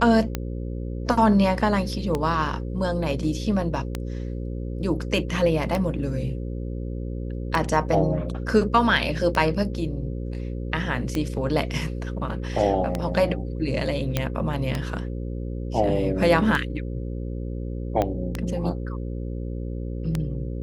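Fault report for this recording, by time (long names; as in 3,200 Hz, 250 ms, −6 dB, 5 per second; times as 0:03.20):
mains buzz 60 Hz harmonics 9 −30 dBFS
scratch tick 33 1/3 rpm −11 dBFS
0:14.17: click −8 dBFS
0:18.02: click −11 dBFS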